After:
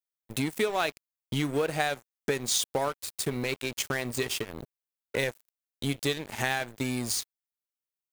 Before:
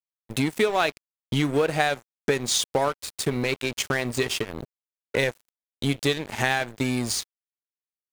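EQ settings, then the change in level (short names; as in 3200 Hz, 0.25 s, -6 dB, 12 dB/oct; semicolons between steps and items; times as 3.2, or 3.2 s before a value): high shelf 9600 Hz +9.5 dB; -5.5 dB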